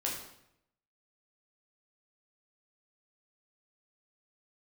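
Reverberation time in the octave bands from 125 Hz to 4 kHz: 1.0, 0.85, 0.80, 0.75, 0.70, 0.65 s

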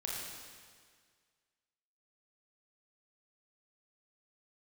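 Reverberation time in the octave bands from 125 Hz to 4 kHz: 1.8, 1.8, 1.8, 1.8, 1.8, 1.7 s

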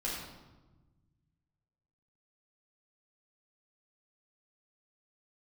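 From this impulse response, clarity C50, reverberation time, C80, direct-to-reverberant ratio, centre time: 0.5 dB, 1.2 s, 3.5 dB, -6.0 dB, 66 ms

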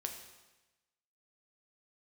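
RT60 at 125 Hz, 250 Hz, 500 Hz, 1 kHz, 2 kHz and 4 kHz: 1.2, 1.1, 1.1, 1.1, 1.1, 1.1 s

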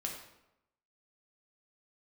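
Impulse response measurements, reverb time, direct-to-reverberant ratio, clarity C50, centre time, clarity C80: 0.90 s, -0.5 dB, 4.5 dB, 34 ms, 7.5 dB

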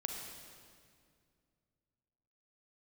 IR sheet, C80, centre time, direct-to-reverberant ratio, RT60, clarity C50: 3.5 dB, 72 ms, 2.0 dB, 2.2 s, 2.5 dB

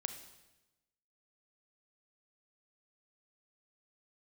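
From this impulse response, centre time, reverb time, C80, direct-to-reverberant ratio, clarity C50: 15 ms, 1.0 s, 11.5 dB, 8.0 dB, 9.0 dB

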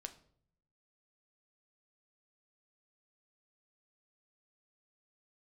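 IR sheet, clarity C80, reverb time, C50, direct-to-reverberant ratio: 18.5 dB, 0.60 s, 15.0 dB, 7.0 dB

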